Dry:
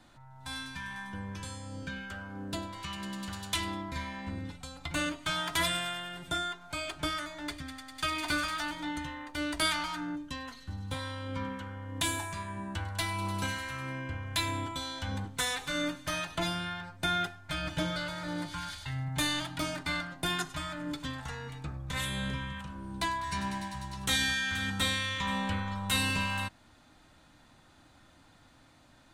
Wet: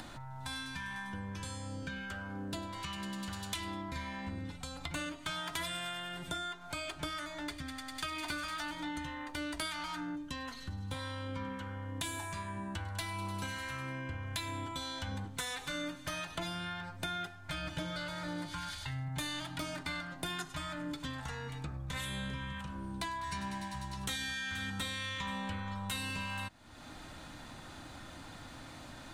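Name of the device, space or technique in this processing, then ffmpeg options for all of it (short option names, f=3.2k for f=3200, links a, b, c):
upward and downward compression: -af "acompressor=mode=upward:threshold=-34dB:ratio=2.5,acompressor=threshold=-33dB:ratio=6,volume=-2dB"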